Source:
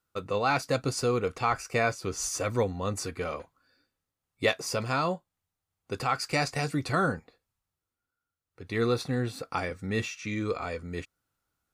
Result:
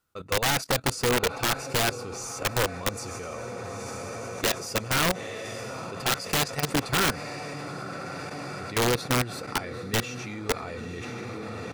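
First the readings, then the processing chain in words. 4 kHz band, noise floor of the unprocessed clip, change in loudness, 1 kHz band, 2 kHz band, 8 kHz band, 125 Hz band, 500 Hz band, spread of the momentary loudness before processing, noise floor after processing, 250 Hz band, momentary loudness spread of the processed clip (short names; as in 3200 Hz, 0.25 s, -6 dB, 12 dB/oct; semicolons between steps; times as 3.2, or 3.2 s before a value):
+8.5 dB, under -85 dBFS, +1.5 dB, +1.0 dB, +4.0 dB, +6.5 dB, +1.0 dB, 0.0 dB, 8 LU, -38 dBFS, +1.0 dB, 12 LU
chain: diffused feedback echo 0.916 s, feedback 68%, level -9.5 dB; level quantiser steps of 14 dB; wrapped overs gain 23 dB; gain +6 dB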